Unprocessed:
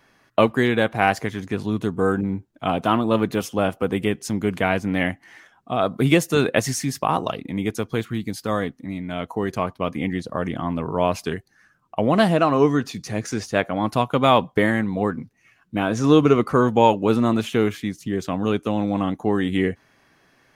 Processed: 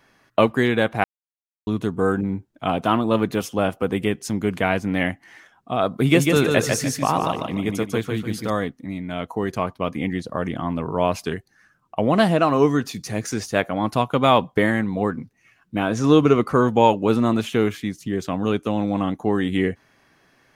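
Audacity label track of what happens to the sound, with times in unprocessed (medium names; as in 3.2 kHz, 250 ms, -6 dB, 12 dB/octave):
1.040000	1.670000	mute
5.930000	8.500000	feedback delay 148 ms, feedback 32%, level -4 dB
12.430000	13.740000	treble shelf 9.1 kHz +8.5 dB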